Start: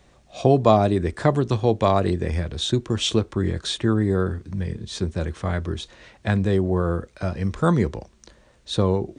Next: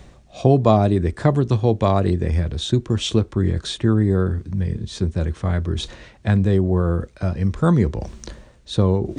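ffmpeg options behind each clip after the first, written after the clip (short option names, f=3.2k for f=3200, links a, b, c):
-af "lowshelf=f=280:g=7.5,areverse,acompressor=mode=upward:threshold=-19dB:ratio=2.5,areverse,volume=-1.5dB"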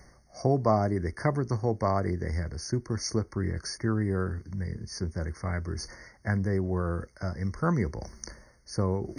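-af "tiltshelf=f=1.2k:g=-6,afftfilt=real='re*eq(mod(floor(b*sr/1024/2200),2),0)':imag='im*eq(mod(floor(b*sr/1024/2200),2),0)':win_size=1024:overlap=0.75,volume=-5dB"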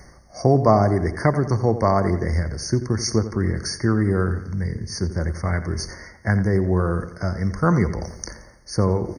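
-filter_complex "[0:a]asplit=2[a][b];[b]adelay=87,lowpass=f=4.4k:p=1,volume=-12dB,asplit=2[c][d];[d]adelay=87,lowpass=f=4.4k:p=1,volume=0.51,asplit=2[e][f];[f]adelay=87,lowpass=f=4.4k:p=1,volume=0.51,asplit=2[g][h];[h]adelay=87,lowpass=f=4.4k:p=1,volume=0.51,asplit=2[i][j];[j]adelay=87,lowpass=f=4.4k:p=1,volume=0.51[k];[a][c][e][g][i][k]amix=inputs=6:normalize=0,volume=8dB"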